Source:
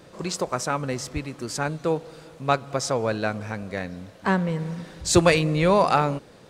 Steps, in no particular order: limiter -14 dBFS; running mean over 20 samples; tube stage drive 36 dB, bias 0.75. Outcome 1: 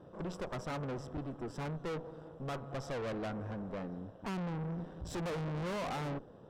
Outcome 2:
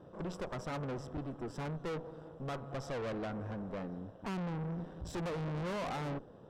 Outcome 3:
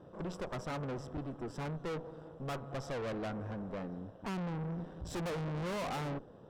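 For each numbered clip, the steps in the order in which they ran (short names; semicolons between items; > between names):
running mean > limiter > tube stage; limiter > running mean > tube stage; running mean > tube stage > limiter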